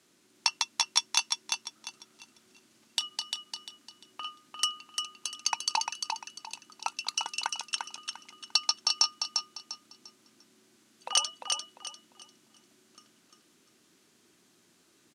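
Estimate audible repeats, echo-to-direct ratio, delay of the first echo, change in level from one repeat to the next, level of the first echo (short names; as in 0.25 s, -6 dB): 3, -4.5 dB, 0.348 s, -10.5 dB, -5.0 dB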